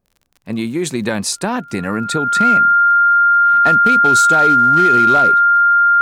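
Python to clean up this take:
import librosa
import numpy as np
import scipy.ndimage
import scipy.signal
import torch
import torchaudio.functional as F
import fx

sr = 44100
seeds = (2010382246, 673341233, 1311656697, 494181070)

y = fx.fix_declip(x, sr, threshold_db=-6.0)
y = fx.fix_declick_ar(y, sr, threshold=6.5)
y = fx.notch(y, sr, hz=1400.0, q=30.0)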